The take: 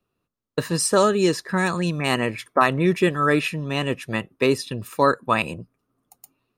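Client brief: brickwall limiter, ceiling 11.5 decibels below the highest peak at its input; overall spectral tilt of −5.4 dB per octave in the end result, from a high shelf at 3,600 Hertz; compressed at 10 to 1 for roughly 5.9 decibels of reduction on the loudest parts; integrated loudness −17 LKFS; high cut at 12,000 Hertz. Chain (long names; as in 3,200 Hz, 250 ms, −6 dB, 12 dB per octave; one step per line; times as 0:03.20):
low-pass filter 12,000 Hz
high-shelf EQ 3,600 Hz −9 dB
downward compressor 10 to 1, threshold −19 dBFS
level +14 dB
brickwall limiter −6.5 dBFS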